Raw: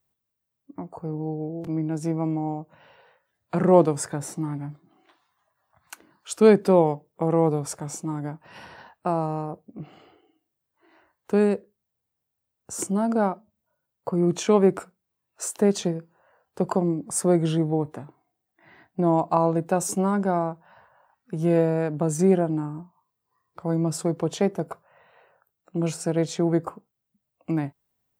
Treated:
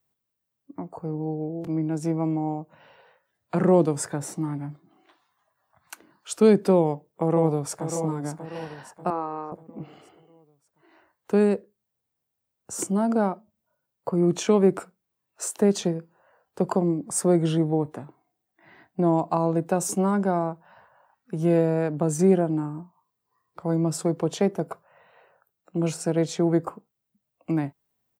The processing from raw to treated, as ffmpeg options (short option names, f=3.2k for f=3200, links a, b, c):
-filter_complex "[0:a]asplit=2[a][b];[b]afade=t=in:st=6.77:d=0.01,afade=t=out:st=7.86:d=0.01,aecho=0:1:590|1180|1770|2360|2950:0.334965|0.150734|0.0678305|0.0305237|0.0137357[c];[a][c]amix=inputs=2:normalize=0,asettb=1/sr,asplit=3[d][e][f];[d]atrim=end=9.104[g];[e]atrim=start=9.1:end=9.52,asetpts=PTS-STARTPTS,afade=t=in:d=0.004:c=qsin,afade=t=out:st=0.416:d=0.004:c=qsin,highpass=410,equalizer=f=650:t=q:w=4:g=-8,equalizer=f=1.2k:t=q:w=4:g=5,equalizer=f=3k:t=q:w=4:g=-8,lowpass=f=3.6k:w=0.5412,lowpass=f=3.6k:w=1.3066[h];[f]atrim=start=9.516[i];[g][h]acrossfade=d=0.004:c1=hsin:c2=qsin[j];[j][i]acrossfade=d=0.004:c1=qsin:c2=hsin,lowshelf=f=340:g=3.5,acrossover=split=390|3000[k][l][m];[l]acompressor=threshold=-21dB:ratio=6[n];[k][n][m]amix=inputs=3:normalize=0,lowshelf=f=100:g=-10.5"